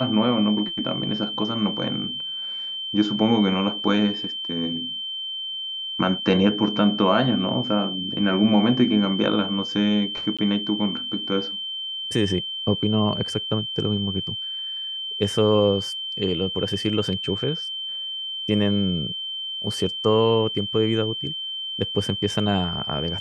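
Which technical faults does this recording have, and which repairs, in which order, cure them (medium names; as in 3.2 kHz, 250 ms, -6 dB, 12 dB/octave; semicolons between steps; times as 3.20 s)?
whine 3.1 kHz -28 dBFS
10.37–10.39 s: dropout 16 ms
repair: band-stop 3.1 kHz, Q 30; interpolate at 10.37 s, 16 ms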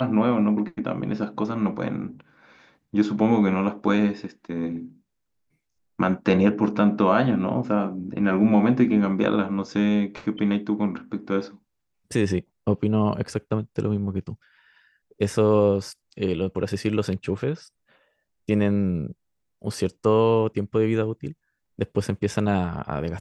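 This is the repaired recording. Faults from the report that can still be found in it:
nothing left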